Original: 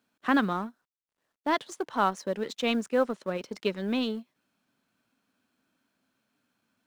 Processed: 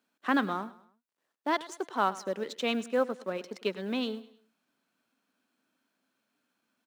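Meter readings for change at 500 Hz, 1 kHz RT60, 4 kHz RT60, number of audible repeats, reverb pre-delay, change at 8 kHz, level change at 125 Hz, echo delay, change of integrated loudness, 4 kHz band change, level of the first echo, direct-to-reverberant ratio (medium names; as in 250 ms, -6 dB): -2.0 dB, no reverb, no reverb, 3, no reverb, -2.0 dB, no reading, 103 ms, -2.5 dB, -2.0 dB, -18.0 dB, no reverb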